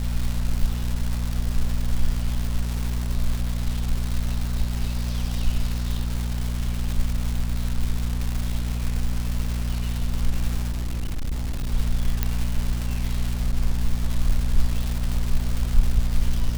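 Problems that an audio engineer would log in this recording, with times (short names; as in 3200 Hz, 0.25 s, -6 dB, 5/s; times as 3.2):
crackle 440/s -26 dBFS
hum 60 Hz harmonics 4 -26 dBFS
10.7–11.74 clipped -22.5 dBFS
12.23 pop -7 dBFS
13.52–13.53 gap 6.7 ms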